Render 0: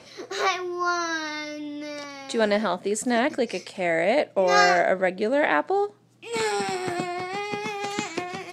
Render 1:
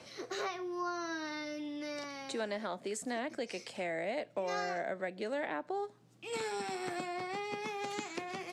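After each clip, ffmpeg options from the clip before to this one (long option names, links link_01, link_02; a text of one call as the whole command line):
ffmpeg -i in.wav -filter_complex "[0:a]acrossover=split=240|770[link_01][link_02][link_03];[link_01]acompressor=threshold=-47dB:ratio=4[link_04];[link_02]acompressor=threshold=-35dB:ratio=4[link_05];[link_03]acompressor=threshold=-36dB:ratio=4[link_06];[link_04][link_05][link_06]amix=inputs=3:normalize=0,volume=-5dB" out.wav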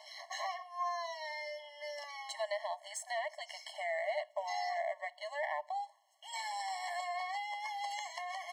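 ffmpeg -i in.wav -af "aeval=exprs='if(lt(val(0),0),0.708*val(0),val(0))':channel_layout=same,highpass=frequency=58:width=0.5412,highpass=frequency=58:width=1.3066,afftfilt=real='re*eq(mod(floor(b*sr/1024/560),2),1)':imag='im*eq(mod(floor(b*sr/1024/560),2),1)':win_size=1024:overlap=0.75,volume=4dB" out.wav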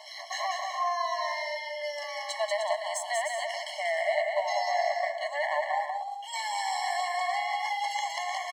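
ffmpeg -i in.wav -af "aecho=1:1:190|304|372.4|413.4|438.1:0.631|0.398|0.251|0.158|0.1,volume=7dB" out.wav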